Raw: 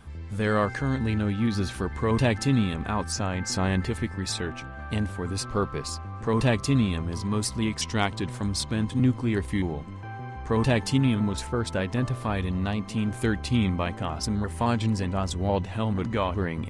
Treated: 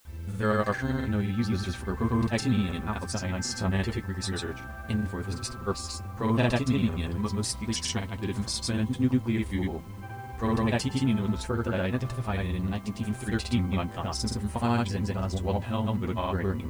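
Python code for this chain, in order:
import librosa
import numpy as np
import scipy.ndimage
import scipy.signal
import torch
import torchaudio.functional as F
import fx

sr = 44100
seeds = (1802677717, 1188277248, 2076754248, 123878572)

y = fx.granulator(x, sr, seeds[0], grain_ms=100.0, per_s=20.0, spray_ms=100.0, spread_st=0)
y = fx.dmg_noise_colour(y, sr, seeds[1], colour='white', level_db=-61.0)
y = fx.notch_comb(y, sr, f0_hz=150.0)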